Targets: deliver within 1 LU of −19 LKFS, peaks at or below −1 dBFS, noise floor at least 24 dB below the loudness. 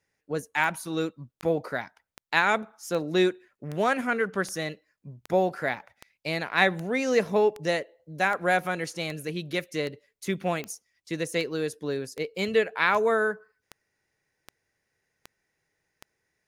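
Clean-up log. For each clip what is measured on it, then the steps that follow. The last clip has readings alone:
number of clicks 21; integrated loudness −27.5 LKFS; sample peak −6.0 dBFS; target loudness −19.0 LKFS
→ click removal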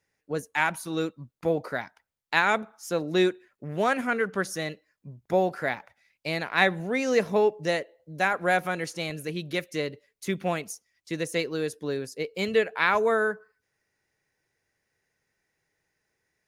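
number of clicks 0; integrated loudness −27.5 LKFS; sample peak −6.0 dBFS; target loudness −19.0 LKFS
→ level +8.5 dB
brickwall limiter −1 dBFS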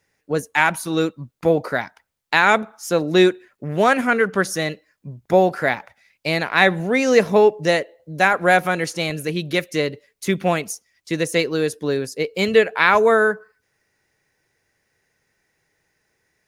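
integrated loudness −19.5 LKFS; sample peak −1.0 dBFS; background noise floor −72 dBFS

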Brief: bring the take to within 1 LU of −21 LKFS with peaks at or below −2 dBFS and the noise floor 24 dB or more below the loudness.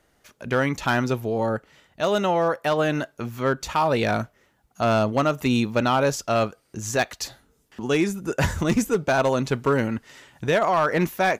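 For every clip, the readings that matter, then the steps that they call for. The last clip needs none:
share of clipped samples 0.7%; peaks flattened at −13.5 dBFS; integrated loudness −23.5 LKFS; sample peak −13.5 dBFS; target loudness −21.0 LKFS
→ clipped peaks rebuilt −13.5 dBFS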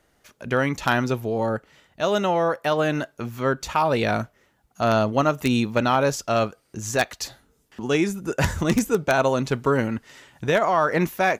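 share of clipped samples 0.0%; integrated loudness −23.0 LKFS; sample peak −4.5 dBFS; target loudness −21.0 LKFS
→ level +2 dB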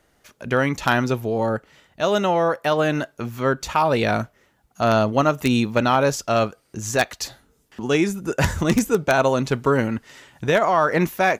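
integrated loudness −21.0 LKFS; sample peak −2.5 dBFS; background noise floor −64 dBFS

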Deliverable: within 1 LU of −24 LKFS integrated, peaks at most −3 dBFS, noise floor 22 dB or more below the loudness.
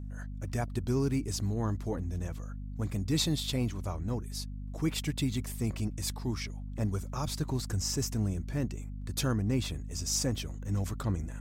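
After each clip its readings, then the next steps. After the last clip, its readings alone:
mains hum 50 Hz; hum harmonics up to 250 Hz; level of the hum −37 dBFS; integrated loudness −33.5 LKFS; sample peak −17.5 dBFS; target loudness −24.0 LKFS
→ mains-hum notches 50/100/150/200/250 Hz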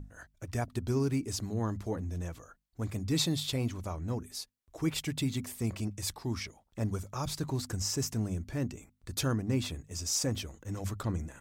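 mains hum none found; integrated loudness −34.5 LKFS; sample peak −17.0 dBFS; target loudness −24.0 LKFS
→ level +10.5 dB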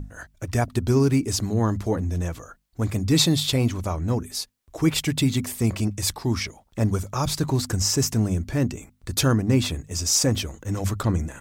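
integrated loudness −24.0 LKFS; sample peak −6.5 dBFS; background noise floor −61 dBFS

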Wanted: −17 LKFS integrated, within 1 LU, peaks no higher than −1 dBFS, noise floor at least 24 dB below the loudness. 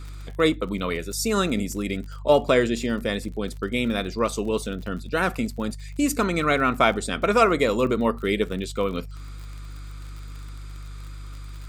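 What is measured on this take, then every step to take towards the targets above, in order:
crackle rate 43 per second; mains hum 50 Hz; hum harmonics up to 150 Hz; level of the hum −34 dBFS; integrated loudness −24.0 LKFS; sample peak −3.5 dBFS; target loudness −17.0 LKFS
→ click removal
hum removal 50 Hz, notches 3
level +7 dB
brickwall limiter −1 dBFS

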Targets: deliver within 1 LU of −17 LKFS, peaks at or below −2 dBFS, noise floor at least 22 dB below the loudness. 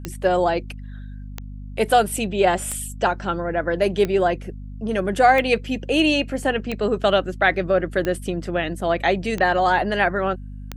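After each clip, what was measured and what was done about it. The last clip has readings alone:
number of clicks 9; mains hum 50 Hz; hum harmonics up to 250 Hz; level of the hum −32 dBFS; integrated loudness −21.0 LKFS; sample peak −3.5 dBFS; target loudness −17.0 LKFS
→ click removal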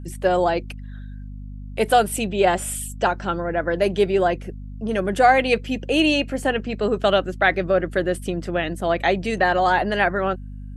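number of clicks 0; mains hum 50 Hz; hum harmonics up to 250 Hz; level of the hum −32 dBFS
→ hum removal 50 Hz, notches 5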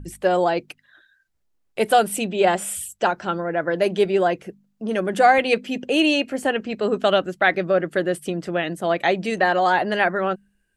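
mains hum none found; integrated loudness −21.0 LKFS; sample peak −3.5 dBFS; target loudness −17.0 LKFS
→ level +4 dB
brickwall limiter −2 dBFS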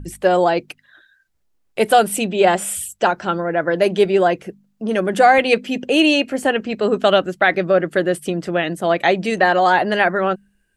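integrated loudness −17.5 LKFS; sample peak −2.0 dBFS; background noise floor −64 dBFS

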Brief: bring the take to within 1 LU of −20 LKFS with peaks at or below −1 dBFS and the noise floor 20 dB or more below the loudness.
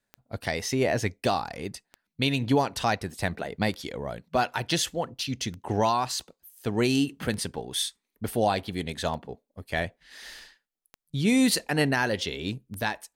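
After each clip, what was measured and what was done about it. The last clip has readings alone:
number of clicks 8; integrated loudness −28.0 LKFS; sample peak −12.0 dBFS; target loudness −20.0 LKFS
→ click removal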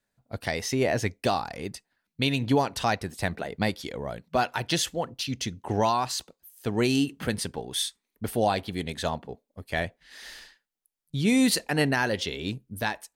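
number of clicks 0; integrated loudness −28.0 LKFS; sample peak −12.0 dBFS; target loudness −20.0 LKFS
→ level +8 dB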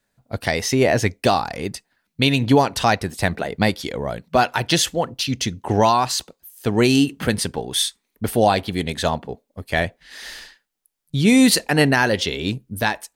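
integrated loudness −20.0 LKFS; sample peak −4.0 dBFS; background noise floor −75 dBFS

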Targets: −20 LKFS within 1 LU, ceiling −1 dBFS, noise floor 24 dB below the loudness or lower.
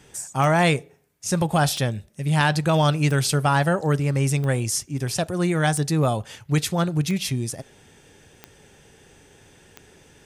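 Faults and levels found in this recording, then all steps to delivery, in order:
number of clicks 8; integrated loudness −22.5 LKFS; sample peak −5.5 dBFS; target loudness −20.0 LKFS
→ click removal
level +2.5 dB

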